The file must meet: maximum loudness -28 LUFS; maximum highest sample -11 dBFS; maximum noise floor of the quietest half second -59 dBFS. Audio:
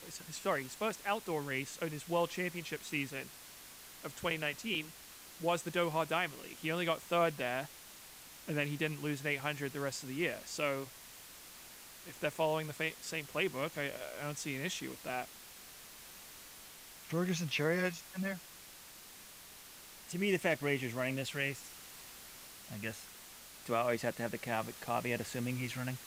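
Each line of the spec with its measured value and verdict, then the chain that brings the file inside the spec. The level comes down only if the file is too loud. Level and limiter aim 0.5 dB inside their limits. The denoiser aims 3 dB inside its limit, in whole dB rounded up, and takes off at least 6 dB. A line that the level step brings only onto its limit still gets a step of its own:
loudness -37.0 LUFS: OK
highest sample -19.5 dBFS: OK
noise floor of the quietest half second -54 dBFS: fail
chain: denoiser 8 dB, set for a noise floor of -54 dBFS

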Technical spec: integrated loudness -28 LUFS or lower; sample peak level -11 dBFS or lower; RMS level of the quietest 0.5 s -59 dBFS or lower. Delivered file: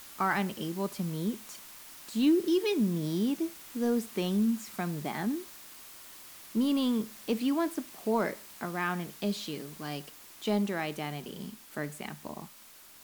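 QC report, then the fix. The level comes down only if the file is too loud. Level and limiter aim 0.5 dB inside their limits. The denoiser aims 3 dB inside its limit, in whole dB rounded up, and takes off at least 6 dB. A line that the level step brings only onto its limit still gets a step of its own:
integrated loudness -32.0 LUFS: OK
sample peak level -16.0 dBFS: OK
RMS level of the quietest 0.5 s -53 dBFS: fail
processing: denoiser 9 dB, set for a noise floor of -53 dBFS

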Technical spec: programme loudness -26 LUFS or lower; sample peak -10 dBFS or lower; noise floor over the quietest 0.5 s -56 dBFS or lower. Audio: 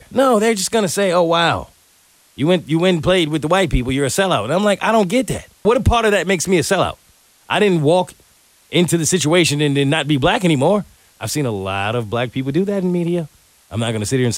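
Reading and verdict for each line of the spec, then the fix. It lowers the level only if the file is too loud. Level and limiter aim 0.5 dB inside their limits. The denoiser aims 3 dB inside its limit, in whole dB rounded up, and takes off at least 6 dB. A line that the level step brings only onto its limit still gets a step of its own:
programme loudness -16.5 LUFS: fail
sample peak -4.0 dBFS: fail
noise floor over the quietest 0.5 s -53 dBFS: fail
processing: gain -10 dB

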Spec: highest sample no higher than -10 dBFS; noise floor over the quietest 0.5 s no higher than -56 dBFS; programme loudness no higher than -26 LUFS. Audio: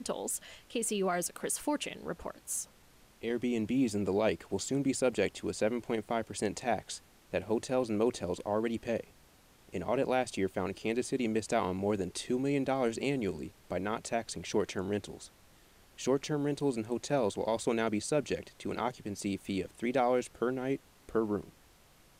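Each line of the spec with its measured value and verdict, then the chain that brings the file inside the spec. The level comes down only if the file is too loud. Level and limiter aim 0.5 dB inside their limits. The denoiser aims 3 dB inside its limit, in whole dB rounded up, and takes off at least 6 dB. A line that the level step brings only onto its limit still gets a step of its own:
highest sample -17.5 dBFS: OK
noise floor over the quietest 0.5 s -61 dBFS: OK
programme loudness -33.5 LUFS: OK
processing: none

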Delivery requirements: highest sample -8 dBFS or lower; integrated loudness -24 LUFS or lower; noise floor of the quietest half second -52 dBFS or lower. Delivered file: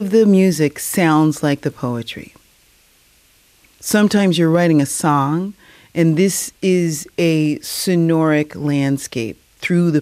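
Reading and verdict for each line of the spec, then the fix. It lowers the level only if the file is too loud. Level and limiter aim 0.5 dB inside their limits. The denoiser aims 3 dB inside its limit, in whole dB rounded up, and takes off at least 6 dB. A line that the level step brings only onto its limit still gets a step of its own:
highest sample -3.5 dBFS: fail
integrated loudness -16.5 LUFS: fail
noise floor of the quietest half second -53 dBFS: OK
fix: gain -8 dB

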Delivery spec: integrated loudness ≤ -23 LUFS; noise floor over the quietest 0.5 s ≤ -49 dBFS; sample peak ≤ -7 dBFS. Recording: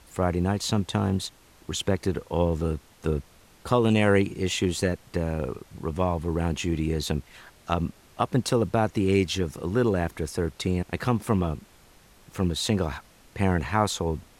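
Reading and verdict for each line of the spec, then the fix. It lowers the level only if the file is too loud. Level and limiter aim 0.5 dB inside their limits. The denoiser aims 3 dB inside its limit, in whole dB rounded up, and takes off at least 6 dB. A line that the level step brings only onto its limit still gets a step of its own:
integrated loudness -26.5 LUFS: OK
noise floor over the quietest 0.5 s -55 dBFS: OK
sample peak -9.0 dBFS: OK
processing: none

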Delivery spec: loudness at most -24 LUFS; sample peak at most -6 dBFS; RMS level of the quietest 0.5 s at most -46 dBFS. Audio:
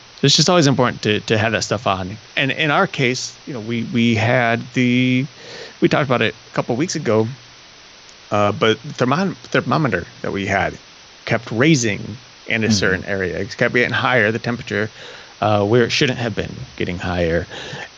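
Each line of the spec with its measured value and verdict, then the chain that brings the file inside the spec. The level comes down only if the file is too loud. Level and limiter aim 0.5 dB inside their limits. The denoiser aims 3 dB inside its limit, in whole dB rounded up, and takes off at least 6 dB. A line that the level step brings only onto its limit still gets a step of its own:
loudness -18.0 LUFS: fail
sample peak -2.0 dBFS: fail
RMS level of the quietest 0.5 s -43 dBFS: fail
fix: gain -6.5 dB

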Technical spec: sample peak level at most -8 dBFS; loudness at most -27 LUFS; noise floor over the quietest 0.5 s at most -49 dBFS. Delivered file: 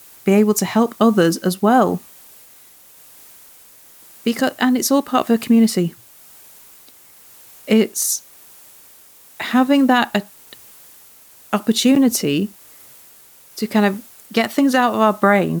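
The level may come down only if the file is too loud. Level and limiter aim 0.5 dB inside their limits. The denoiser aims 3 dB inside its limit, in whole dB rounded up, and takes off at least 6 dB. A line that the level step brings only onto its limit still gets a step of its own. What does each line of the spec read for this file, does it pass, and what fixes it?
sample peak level -3.0 dBFS: fail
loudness -17.0 LUFS: fail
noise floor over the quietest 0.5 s -46 dBFS: fail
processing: gain -10.5 dB

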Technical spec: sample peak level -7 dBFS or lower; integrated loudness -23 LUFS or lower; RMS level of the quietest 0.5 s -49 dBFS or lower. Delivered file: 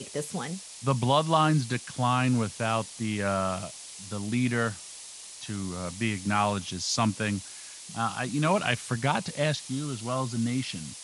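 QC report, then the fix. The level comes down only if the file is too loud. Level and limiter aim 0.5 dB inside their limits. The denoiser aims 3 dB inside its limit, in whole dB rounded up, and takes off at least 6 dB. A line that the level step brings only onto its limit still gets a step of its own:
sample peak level -10.0 dBFS: OK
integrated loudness -28.5 LUFS: OK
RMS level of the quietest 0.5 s -44 dBFS: fail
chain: denoiser 8 dB, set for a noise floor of -44 dBFS

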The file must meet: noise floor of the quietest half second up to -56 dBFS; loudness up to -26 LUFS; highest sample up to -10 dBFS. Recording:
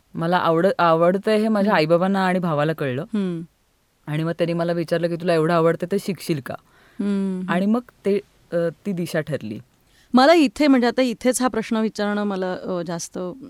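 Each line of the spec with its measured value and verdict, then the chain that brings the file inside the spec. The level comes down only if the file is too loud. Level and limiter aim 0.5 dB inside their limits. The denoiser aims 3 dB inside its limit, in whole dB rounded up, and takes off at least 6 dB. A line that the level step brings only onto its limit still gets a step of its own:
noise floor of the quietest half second -63 dBFS: OK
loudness -21.0 LUFS: fail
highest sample -5.0 dBFS: fail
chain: gain -5.5 dB

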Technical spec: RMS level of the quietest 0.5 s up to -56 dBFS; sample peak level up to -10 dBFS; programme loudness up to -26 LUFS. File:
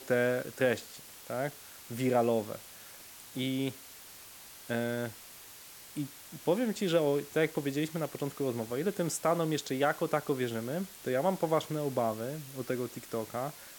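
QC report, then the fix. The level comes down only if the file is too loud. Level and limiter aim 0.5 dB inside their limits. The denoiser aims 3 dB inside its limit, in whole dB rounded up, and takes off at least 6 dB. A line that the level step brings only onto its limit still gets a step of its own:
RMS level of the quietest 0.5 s -51 dBFS: fail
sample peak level -15.0 dBFS: OK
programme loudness -33.0 LUFS: OK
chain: denoiser 8 dB, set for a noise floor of -51 dBFS

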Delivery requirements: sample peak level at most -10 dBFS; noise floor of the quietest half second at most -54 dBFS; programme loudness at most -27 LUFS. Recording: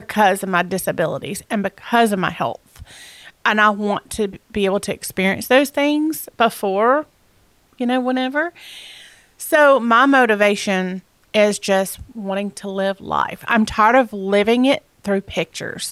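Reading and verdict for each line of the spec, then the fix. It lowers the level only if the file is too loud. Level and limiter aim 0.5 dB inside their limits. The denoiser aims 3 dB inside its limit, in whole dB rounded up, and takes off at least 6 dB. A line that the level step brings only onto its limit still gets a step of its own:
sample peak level -2.5 dBFS: fail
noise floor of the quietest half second -56 dBFS: OK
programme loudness -18.0 LUFS: fail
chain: gain -9.5 dB

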